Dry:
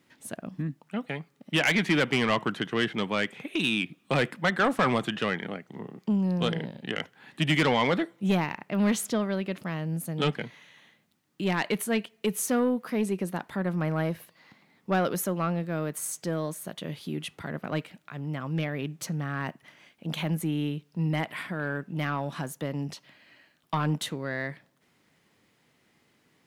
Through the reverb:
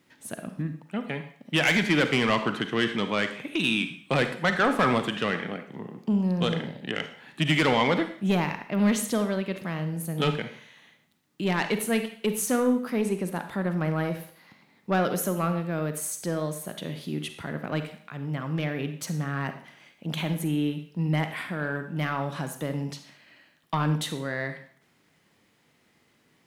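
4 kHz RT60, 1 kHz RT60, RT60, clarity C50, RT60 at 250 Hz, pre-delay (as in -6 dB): 0.55 s, 0.55 s, 0.55 s, 9.5 dB, 0.50 s, 37 ms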